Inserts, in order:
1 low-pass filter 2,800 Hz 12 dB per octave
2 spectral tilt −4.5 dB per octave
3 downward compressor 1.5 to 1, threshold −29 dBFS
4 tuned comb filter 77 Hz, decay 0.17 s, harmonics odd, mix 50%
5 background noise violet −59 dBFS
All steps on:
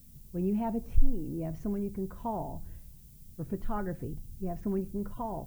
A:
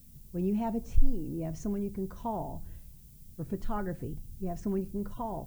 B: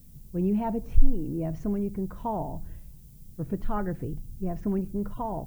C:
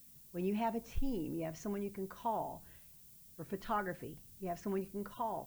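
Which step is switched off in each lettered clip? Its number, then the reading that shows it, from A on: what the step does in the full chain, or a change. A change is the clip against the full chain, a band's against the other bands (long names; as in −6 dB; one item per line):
1, 8 kHz band +4.0 dB
4, change in integrated loudness +4.0 LU
2, 125 Hz band −10.0 dB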